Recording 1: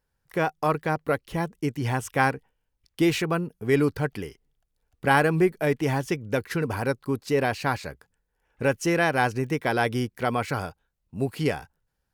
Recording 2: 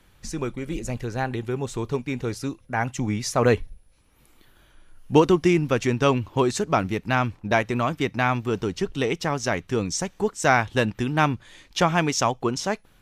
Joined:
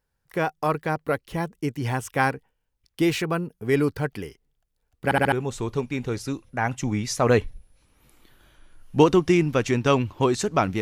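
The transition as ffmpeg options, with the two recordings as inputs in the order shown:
-filter_complex "[0:a]apad=whole_dur=10.81,atrim=end=10.81,asplit=4[a][b][c][d];[a]atrim=end=5.112[e];[b]atrim=start=5.038:end=5.112[f];[c]atrim=start=5.038:end=5.112[g];[d]atrim=start=5.038:end=5.112[h];[1:a]atrim=start=1.478:end=6.97[i];[e][f]acrossfade=d=0.004:c1=hsin:c2=hsin[j];[j][g]acrossfade=d=0.004:c1=hsin:c2=hsin[k];[k][h]acrossfade=d=0.004:c1=hsin:c2=hsin[l];[l][i]acrossfade=d=0.004:c1=hsin:c2=hsin"

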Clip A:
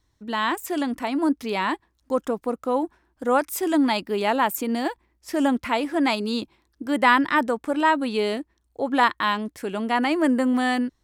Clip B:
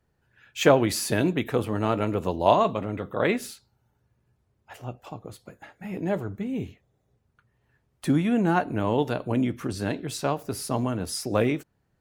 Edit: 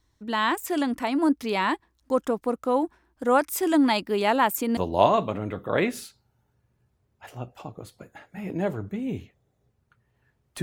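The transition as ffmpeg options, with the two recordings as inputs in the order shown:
-filter_complex "[0:a]apad=whole_dur=10.62,atrim=end=10.62,atrim=end=4.772[a];[1:a]atrim=start=2.238:end=8.09[b];[a][b]acrossfade=d=0.004:c1=hsin:c2=hsin"

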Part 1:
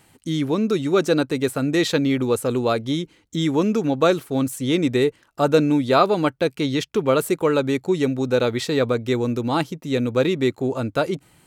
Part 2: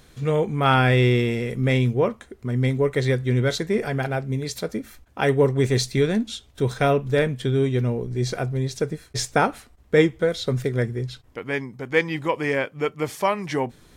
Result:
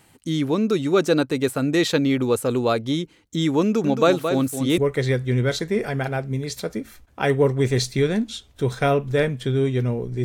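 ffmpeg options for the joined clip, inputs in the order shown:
-filter_complex "[0:a]asettb=1/sr,asplit=3[a][b][c];[a]atrim=end=3.624[d];[b]atrim=start=3.62:end=4.78,asetpts=PTS-STARTPTS,afade=t=in:d=0.004:c=qsin,afade=t=out:st=1.156:d=0.004:c=qsin,aecho=1:1:221:0.422,atrim=end_sample=51156[e];[c]atrim=start=4.776[f];[d][e]acrossfade=d=0.004:c1=hsin:c2=qsin[g];[g][f]acrossfade=d=0.004:c1=qsin:c2=hsin,apad=whole_dur=10.24,atrim=end=10.24,atrim=end=4.782[h];[1:a]atrim=start=2.768:end=8.23[i];[h][i]acrossfade=d=0.004:c1=hsin:c2=hsin"

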